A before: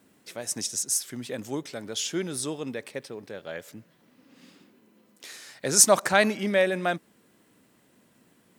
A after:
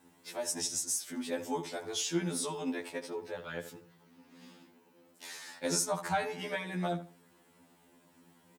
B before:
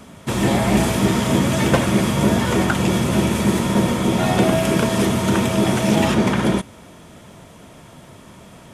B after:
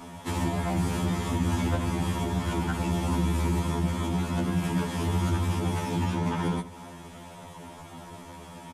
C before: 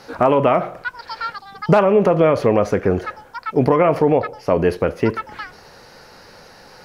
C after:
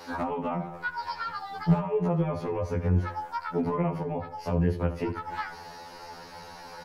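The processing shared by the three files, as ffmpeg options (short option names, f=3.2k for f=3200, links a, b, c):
-filter_complex "[0:a]equalizer=f=890:t=o:w=0.32:g=9,acrossover=split=180[a][b];[b]acompressor=threshold=-27dB:ratio=8[c];[a][c]amix=inputs=2:normalize=0,asoftclip=type=hard:threshold=-14dB,asplit=2[d][e];[e]adelay=76,lowpass=f=2.4k:p=1,volume=-12dB,asplit=2[f][g];[g]adelay=76,lowpass=f=2.4k:p=1,volume=0.25,asplit=2[h][i];[i]adelay=76,lowpass=f=2.4k:p=1,volume=0.25[j];[d][f][h][j]amix=inputs=4:normalize=0,afftfilt=real='re*2*eq(mod(b,4),0)':imag='im*2*eq(mod(b,4),0)':win_size=2048:overlap=0.75"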